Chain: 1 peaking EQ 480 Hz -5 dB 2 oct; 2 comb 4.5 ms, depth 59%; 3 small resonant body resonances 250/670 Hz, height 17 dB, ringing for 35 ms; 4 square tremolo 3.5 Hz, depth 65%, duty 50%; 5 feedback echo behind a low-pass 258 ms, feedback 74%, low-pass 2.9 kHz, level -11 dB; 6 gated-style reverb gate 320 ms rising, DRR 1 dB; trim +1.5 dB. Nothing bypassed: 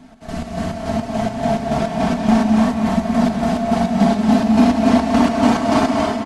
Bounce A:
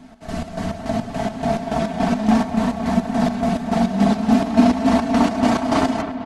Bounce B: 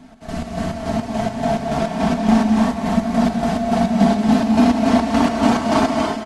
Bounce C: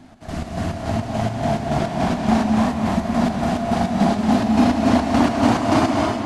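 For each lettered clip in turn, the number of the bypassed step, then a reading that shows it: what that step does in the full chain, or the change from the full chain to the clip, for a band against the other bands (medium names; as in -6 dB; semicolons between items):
6, crest factor change +2.0 dB; 5, loudness change -1.0 LU; 2, 250 Hz band -2.0 dB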